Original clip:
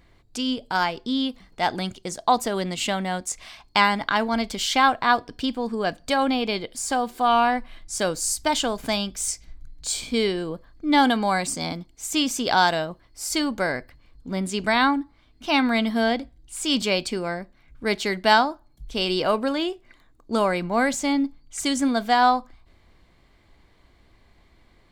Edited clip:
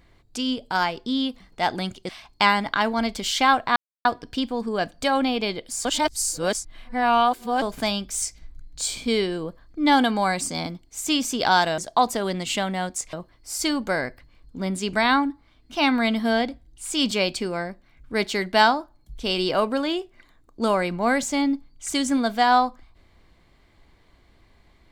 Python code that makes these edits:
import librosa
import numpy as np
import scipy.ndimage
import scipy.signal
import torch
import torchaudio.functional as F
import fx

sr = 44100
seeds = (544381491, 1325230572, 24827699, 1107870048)

y = fx.edit(x, sr, fx.move(start_s=2.09, length_s=1.35, to_s=12.84),
    fx.insert_silence(at_s=5.11, length_s=0.29),
    fx.reverse_span(start_s=6.91, length_s=1.77), tone=tone)